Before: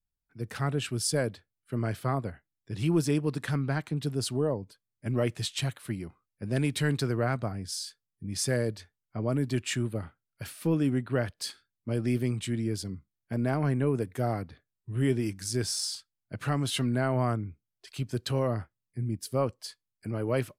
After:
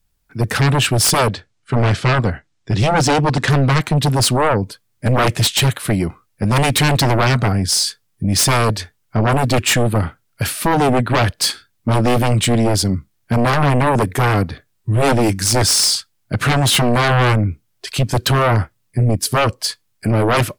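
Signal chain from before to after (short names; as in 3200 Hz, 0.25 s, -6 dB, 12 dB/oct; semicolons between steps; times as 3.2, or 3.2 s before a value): 1.28–3.5 LPF 7700 Hz 24 dB/oct; sine folder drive 17 dB, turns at -10.5 dBFS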